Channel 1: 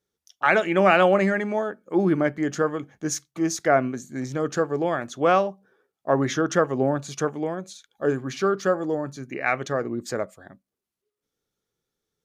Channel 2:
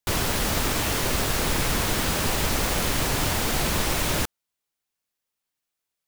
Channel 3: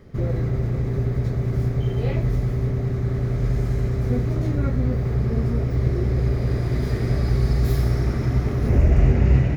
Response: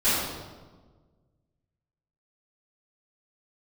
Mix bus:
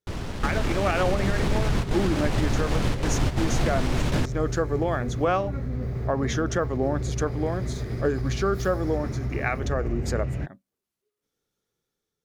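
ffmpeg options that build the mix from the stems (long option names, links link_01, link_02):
-filter_complex "[0:a]dynaudnorm=framelen=240:gausssize=5:maxgain=7.5dB,volume=-6.5dB,asplit=2[link_01][link_02];[1:a]lowshelf=frequency=440:gain=10,adynamicsmooth=sensitivity=3:basefreq=3800,volume=-2dB[link_03];[2:a]alimiter=limit=-14.5dB:level=0:latency=1:release=71,adelay=900,volume=-6.5dB[link_04];[link_02]apad=whole_len=267976[link_05];[link_03][link_05]sidechaingate=range=-11dB:threshold=-44dB:ratio=16:detection=peak[link_06];[link_01][link_06][link_04]amix=inputs=3:normalize=0,alimiter=limit=-13.5dB:level=0:latency=1:release=170"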